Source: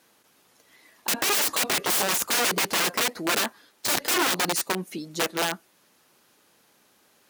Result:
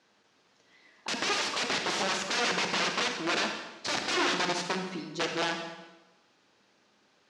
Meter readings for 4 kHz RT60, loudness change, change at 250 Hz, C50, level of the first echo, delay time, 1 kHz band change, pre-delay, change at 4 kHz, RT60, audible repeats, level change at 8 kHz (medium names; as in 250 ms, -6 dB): 0.95 s, -5.5 dB, -3.0 dB, 5.0 dB, no echo, no echo, -3.0 dB, 35 ms, -3.5 dB, 1.1 s, no echo, -11.0 dB